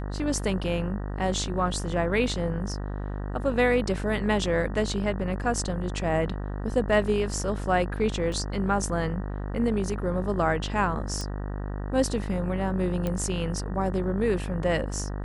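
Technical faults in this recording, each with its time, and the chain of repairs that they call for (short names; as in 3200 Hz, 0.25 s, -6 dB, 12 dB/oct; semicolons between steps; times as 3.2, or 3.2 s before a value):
buzz 50 Hz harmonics 38 -32 dBFS
8.32 gap 2.2 ms
11.21 pop
13.07 pop -16 dBFS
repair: de-click; de-hum 50 Hz, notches 38; interpolate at 8.32, 2.2 ms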